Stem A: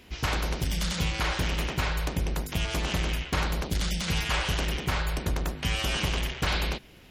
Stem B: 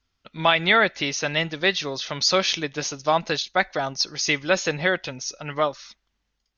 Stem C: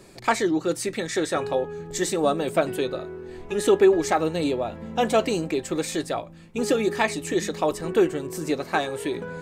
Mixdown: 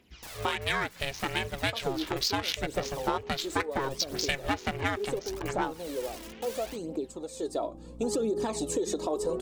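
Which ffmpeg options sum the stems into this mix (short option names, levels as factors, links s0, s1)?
-filter_complex "[0:a]highpass=f=110:p=1,aeval=exprs='(mod(21.1*val(0)+1,2)-1)/21.1':c=same,volume=0.211[s0];[1:a]dynaudnorm=f=480:g=5:m=3.76,aeval=exprs='val(0)*sin(2*PI*270*n/s)':c=same,adynamicsmooth=sensitivity=1.5:basefreq=1900,volume=0.631,asplit=2[s1][s2];[2:a]aeval=exprs='val(0)+0.01*(sin(2*PI*60*n/s)+sin(2*PI*2*60*n/s)/2+sin(2*PI*3*60*n/s)/3+sin(2*PI*4*60*n/s)/4+sin(2*PI*5*60*n/s)/5)':c=same,acompressor=threshold=0.0708:ratio=6,equalizer=f=125:t=o:w=1:g=-3,equalizer=f=250:t=o:w=1:g=10,equalizer=f=500:t=o:w=1:g=12,equalizer=f=1000:t=o:w=1:g=9,equalizer=f=2000:t=o:w=1:g=-12,equalizer=f=4000:t=o:w=1:g=6,equalizer=f=8000:t=o:w=1:g=8,adelay=1450,volume=0.398,afade=t=in:st=7.35:d=0.59:silence=0.237137[s3];[s2]apad=whole_len=313347[s4];[s0][s4]sidechaincompress=threshold=0.0447:ratio=8:attack=20:release=495[s5];[s5][s3]amix=inputs=2:normalize=0,aphaser=in_gain=1:out_gain=1:delay=3.2:decay=0.53:speed=0.72:type=triangular,alimiter=limit=0.119:level=0:latency=1:release=94,volume=1[s6];[s1][s6]amix=inputs=2:normalize=0,acompressor=threshold=0.0562:ratio=6"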